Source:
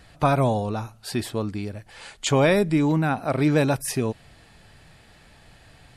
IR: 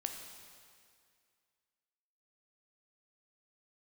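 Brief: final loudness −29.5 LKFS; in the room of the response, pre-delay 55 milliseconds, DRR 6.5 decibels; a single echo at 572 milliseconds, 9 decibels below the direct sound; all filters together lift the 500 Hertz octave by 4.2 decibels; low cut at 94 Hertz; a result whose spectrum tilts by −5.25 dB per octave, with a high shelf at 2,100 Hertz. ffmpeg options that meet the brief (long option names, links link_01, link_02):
-filter_complex "[0:a]highpass=94,equalizer=frequency=500:width_type=o:gain=5.5,highshelf=frequency=2100:gain=-4.5,aecho=1:1:572:0.355,asplit=2[link_01][link_02];[1:a]atrim=start_sample=2205,adelay=55[link_03];[link_02][link_03]afir=irnorm=-1:irlink=0,volume=-6.5dB[link_04];[link_01][link_04]amix=inputs=2:normalize=0,volume=-9dB"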